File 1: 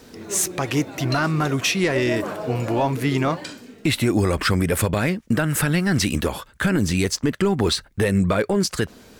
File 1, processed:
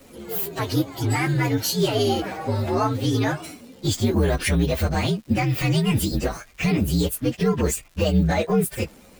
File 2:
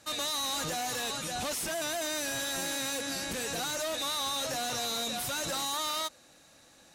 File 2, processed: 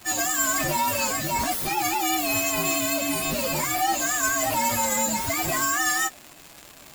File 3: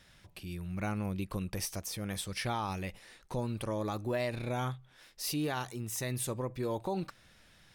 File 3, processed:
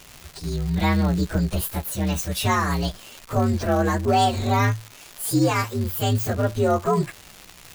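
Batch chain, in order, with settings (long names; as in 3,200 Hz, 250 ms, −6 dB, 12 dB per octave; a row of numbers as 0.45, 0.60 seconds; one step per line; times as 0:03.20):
partials spread apart or drawn together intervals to 123%
surface crackle 310 per second −44 dBFS
loudness normalisation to −23 LKFS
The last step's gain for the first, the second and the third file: +1.5, +13.0, +15.5 decibels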